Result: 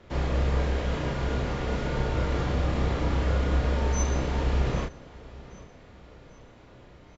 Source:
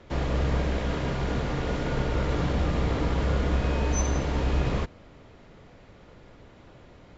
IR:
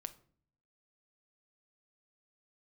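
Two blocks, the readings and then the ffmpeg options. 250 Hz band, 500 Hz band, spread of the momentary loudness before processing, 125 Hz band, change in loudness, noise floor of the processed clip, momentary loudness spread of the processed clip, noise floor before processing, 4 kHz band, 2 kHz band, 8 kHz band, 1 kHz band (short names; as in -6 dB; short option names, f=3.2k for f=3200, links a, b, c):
-2.0 dB, -0.5 dB, 3 LU, 0.0 dB, 0.0 dB, -51 dBFS, 17 LU, -52 dBFS, -0.5 dB, -0.5 dB, n/a, -0.5 dB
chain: -filter_complex "[0:a]asplit=2[a][b];[b]adelay=32,volume=-3dB[c];[a][c]amix=inputs=2:normalize=0,asplit=2[d][e];[e]aecho=0:1:785|1570|2355|3140:0.1|0.047|0.0221|0.0104[f];[d][f]amix=inputs=2:normalize=0,volume=-2.5dB"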